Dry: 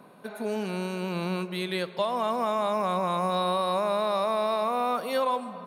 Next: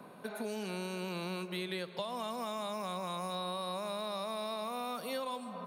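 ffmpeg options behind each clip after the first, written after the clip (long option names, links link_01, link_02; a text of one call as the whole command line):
ffmpeg -i in.wav -filter_complex "[0:a]acrossover=split=200|3000[link_01][link_02][link_03];[link_01]acompressor=threshold=-50dB:ratio=4[link_04];[link_02]acompressor=threshold=-39dB:ratio=4[link_05];[link_03]acompressor=threshold=-45dB:ratio=4[link_06];[link_04][link_05][link_06]amix=inputs=3:normalize=0" out.wav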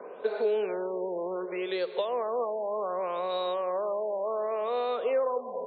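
ffmpeg -i in.wav -af "asoftclip=type=tanh:threshold=-27.5dB,highpass=frequency=450:width_type=q:width=4.9,afftfilt=real='re*lt(b*sr/1024,1000*pow(4600/1000,0.5+0.5*sin(2*PI*0.67*pts/sr)))':imag='im*lt(b*sr/1024,1000*pow(4600/1000,0.5+0.5*sin(2*PI*0.67*pts/sr)))':win_size=1024:overlap=0.75,volume=4dB" out.wav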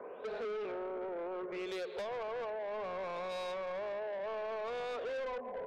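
ffmpeg -i in.wav -af "asoftclip=type=tanh:threshold=-33.5dB,volume=-3dB" out.wav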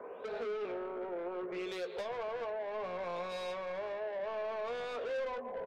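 ffmpeg -i in.wav -filter_complex "[0:a]asplit=2[link_01][link_02];[link_02]adelay=17,volume=-8.5dB[link_03];[link_01][link_03]amix=inputs=2:normalize=0" out.wav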